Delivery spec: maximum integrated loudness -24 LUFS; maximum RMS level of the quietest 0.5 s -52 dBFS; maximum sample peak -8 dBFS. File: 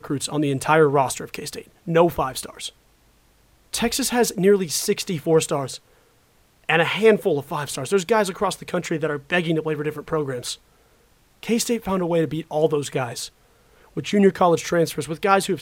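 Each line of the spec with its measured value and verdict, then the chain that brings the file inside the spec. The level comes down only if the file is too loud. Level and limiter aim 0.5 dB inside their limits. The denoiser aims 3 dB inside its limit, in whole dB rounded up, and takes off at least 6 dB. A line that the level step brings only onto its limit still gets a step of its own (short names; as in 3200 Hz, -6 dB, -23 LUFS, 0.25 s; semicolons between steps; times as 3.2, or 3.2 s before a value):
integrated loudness -21.5 LUFS: fail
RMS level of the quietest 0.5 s -59 dBFS: OK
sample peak -3.0 dBFS: fail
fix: gain -3 dB; limiter -8.5 dBFS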